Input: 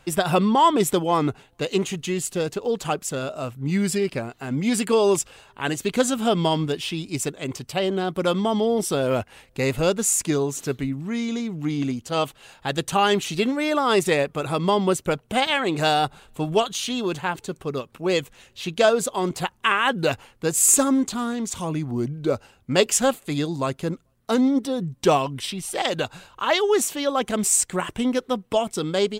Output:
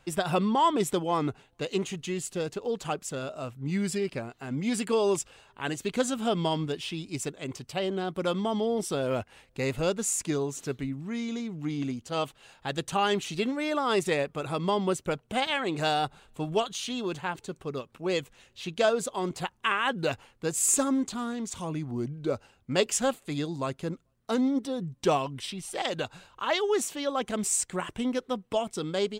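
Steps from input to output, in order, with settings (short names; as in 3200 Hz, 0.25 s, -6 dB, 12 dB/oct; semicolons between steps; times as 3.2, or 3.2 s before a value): bell 13000 Hz -6.5 dB 0.53 oct; gain -6.5 dB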